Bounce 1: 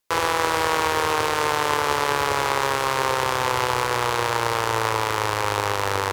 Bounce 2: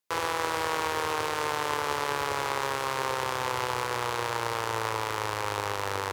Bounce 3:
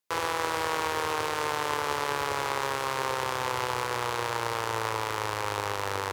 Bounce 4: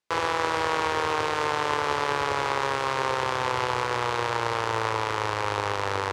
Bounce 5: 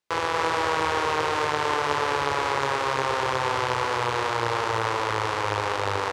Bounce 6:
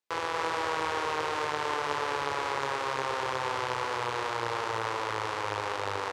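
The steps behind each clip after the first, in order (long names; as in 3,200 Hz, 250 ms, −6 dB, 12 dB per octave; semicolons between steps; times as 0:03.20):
high-pass filter 67 Hz; level −7.5 dB
no processing that can be heard
high-frequency loss of the air 70 metres; level +4 dB
single-tap delay 238 ms −4.5 dB
low-shelf EQ 130 Hz −6.5 dB; level −6 dB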